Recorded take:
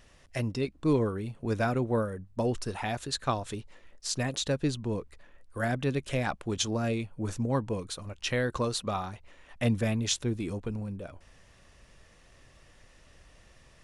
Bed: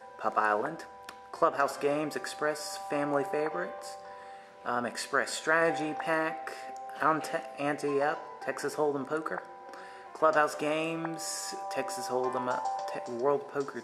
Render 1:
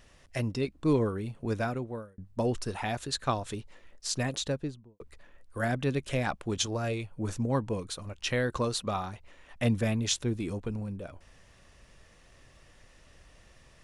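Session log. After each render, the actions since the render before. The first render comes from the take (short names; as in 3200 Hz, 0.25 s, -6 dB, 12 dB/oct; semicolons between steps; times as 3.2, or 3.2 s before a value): 1.42–2.18 fade out; 4.3–5 studio fade out; 6.66–7.12 bell 220 Hz -7.5 dB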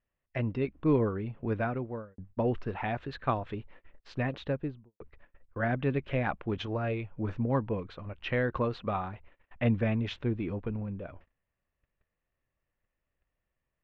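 LPF 2700 Hz 24 dB/oct; gate -50 dBFS, range -27 dB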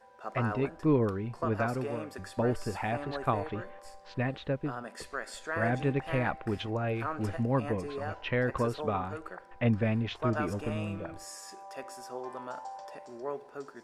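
add bed -9 dB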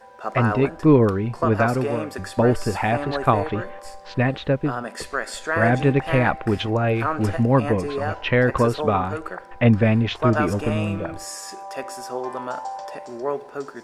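gain +11 dB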